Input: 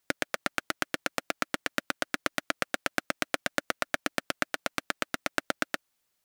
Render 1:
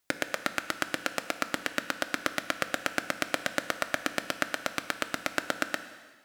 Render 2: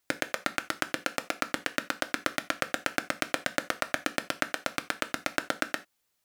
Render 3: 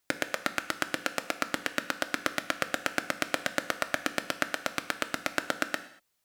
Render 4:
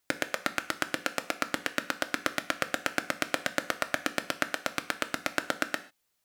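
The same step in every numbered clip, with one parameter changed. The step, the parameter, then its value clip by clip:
non-linear reverb, gate: 0.52, 0.11, 0.26, 0.17 s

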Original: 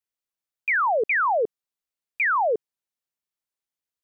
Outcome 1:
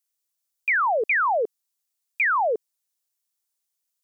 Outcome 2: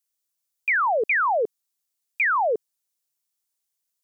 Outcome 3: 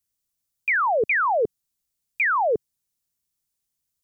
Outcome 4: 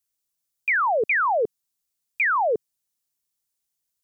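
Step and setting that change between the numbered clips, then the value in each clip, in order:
tone controls, bass: -12, -3, +15, +7 dB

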